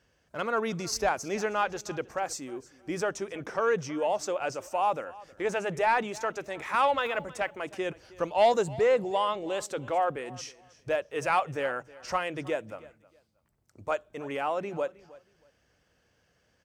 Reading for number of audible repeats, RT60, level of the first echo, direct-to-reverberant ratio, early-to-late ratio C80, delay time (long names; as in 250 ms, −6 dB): 2, no reverb audible, −20.5 dB, no reverb audible, no reverb audible, 316 ms